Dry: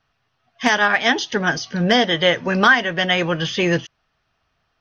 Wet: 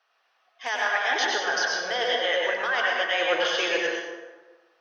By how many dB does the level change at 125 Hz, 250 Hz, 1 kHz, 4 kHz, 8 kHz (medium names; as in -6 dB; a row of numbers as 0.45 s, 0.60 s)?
under -30 dB, -18.5 dB, -6.5 dB, -5.5 dB, no reading